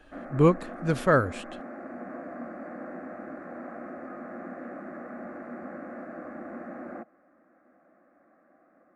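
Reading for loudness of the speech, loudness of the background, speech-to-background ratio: -24.5 LUFS, -40.5 LUFS, 16.0 dB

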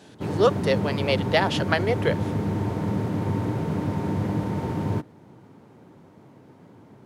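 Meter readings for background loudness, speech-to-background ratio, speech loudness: -27.0 LUFS, 2.5 dB, -24.5 LUFS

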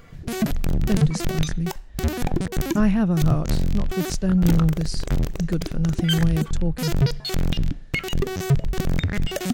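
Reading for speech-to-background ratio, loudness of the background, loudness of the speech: 2.0 dB, -26.5 LUFS, -24.5 LUFS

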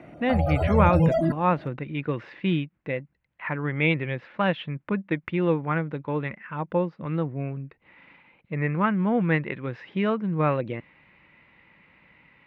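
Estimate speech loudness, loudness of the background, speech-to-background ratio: -27.0 LUFS, -24.0 LUFS, -3.0 dB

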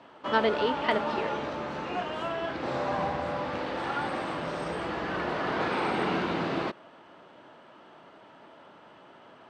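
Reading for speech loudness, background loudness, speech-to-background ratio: -30.0 LUFS, -31.5 LUFS, 1.5 dB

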